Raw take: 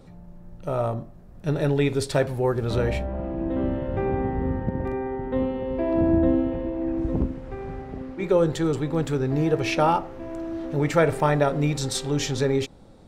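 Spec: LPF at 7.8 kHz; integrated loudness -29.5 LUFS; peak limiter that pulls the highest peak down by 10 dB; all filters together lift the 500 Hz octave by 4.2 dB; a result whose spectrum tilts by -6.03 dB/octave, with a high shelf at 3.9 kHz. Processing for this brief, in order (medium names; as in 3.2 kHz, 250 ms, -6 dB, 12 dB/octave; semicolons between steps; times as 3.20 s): low-pass 7.8 kHz; peaking EQ 500 Hz +5 dB; treble shelf 3.9 kHz +5.5 dB; trim -4.5 dB; peak limiter -19 dBFS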